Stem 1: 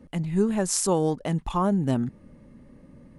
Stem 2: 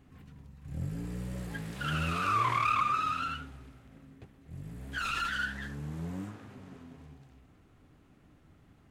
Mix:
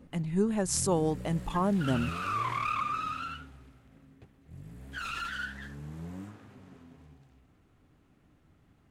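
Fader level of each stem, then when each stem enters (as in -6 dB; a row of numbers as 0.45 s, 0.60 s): -4.5 dB, -3.5 dB; 0.00 s, 0.00 s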